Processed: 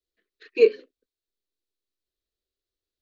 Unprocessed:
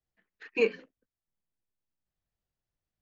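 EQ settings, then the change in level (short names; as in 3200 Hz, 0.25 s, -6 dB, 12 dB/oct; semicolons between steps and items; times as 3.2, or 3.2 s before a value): fifteen-band EQ 400 Hz +10 dB, 1000 Hz +9 dB, 4000 Hz +12 dB; dynamic EQ 540 Hz, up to +5 dB, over -26 dBFS, Q 0.76; fixed phaser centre 370 Hz, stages 4; -2.5 dB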